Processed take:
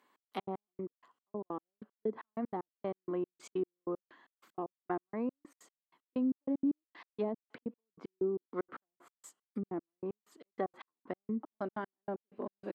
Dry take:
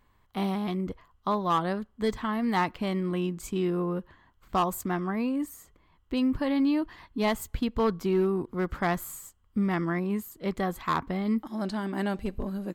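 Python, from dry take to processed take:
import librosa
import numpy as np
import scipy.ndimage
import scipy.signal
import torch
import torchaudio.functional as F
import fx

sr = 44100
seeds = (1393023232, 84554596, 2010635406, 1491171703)

y = fx.env_lowpass_down(x, sr, base_hz=400.0, full_db=-22.5)
y = scipy.signal.sosfilt(scipy.signal.butter(4, 260.0, 'highpass', fs=sr, output='sos'), y)
y = fx.step_gate(y, sr, bpm=190, pattern='xx..x.x...x..', floor_db=-60.0, edge_ms=4.5)
y = y * 10.0 ** (-2.0 / 20.0)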